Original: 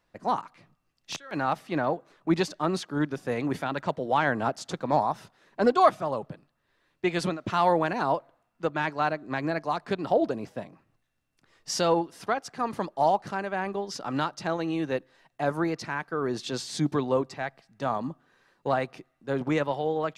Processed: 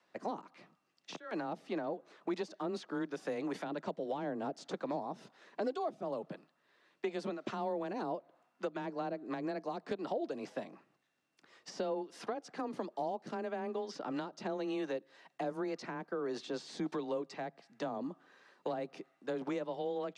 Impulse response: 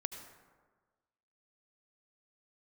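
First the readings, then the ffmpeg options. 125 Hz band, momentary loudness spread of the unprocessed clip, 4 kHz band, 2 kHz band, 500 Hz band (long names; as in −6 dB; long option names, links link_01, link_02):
−16.0 dB, 10 LU, −12.5 dB, −14.5 dB, −9.5 dB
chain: -filter_complex "[0:a]highpass=230,lowpass=7400,acrossover=split=700[link_01][link_02];[link_02]acompressor=threshold=-41dB:ratio=12[link_03];[link_01][link_03]amix=inputs=2:normalize=0,afreqshift=17,acrossover=split=570|1800|3600[link_04][link_05][link_06][link_07];[link_04]acompressor=threshold=-40dB:ratio=4[link_08];[link_05]acompressor=threshold=-46dB:ratio=4[link_09];[link_06]acompressor=threshold=-57dB:ratio=4[link_10];[link_07]acompressor=threshold=-56dB:ratio=4[link_11];[link_08][link_09][link_10][link_11]amix=inputs=4:normalize=0,volume=1.5dB"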